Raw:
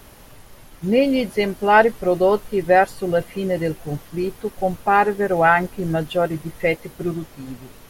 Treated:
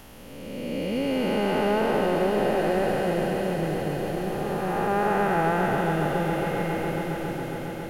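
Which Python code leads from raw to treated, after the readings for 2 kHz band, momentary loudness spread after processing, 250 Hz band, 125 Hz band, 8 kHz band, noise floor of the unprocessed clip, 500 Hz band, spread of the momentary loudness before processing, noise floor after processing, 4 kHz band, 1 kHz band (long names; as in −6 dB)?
−8.0 dB, 8 LU, −3.0 dB, −1.5 dB, −2.0 dB, −46 dBFS, −5.5 dB, 12 LU, −39 dBFS, −2.5 dB, −6.5 dB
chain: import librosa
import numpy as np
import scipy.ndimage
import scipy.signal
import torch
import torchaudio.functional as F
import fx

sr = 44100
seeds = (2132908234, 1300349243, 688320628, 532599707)

y = fx.spec_blur(x, sr, span_ms=795.0)
y = fx.peak_eq(y, sr, hz=3000.0, db=4.0, octaves=0.38)
y = fx.echo_swell(y, sr, ms=137, loudest=5, wet_db=-14)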